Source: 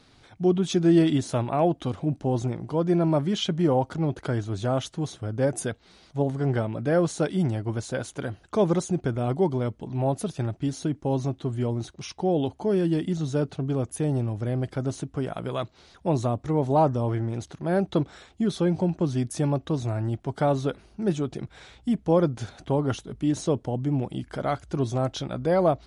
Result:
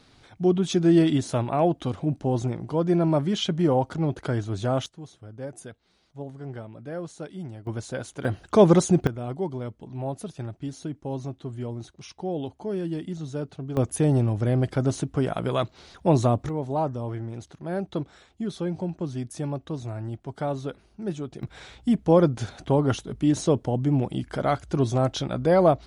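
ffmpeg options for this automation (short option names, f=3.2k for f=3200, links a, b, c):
-af "asetnsamples=n=441:p=0,asendcmd='4.86 volume volume -12dB;7.67 volume volume -2.5dB;8.25 volume volume 6.5dB;9.07 volume volume -6dB;13.77 volume volume 4.5dB;16.49 volume volume -5.5dB;21.43 volume volume 3dB',volume=0.5dB"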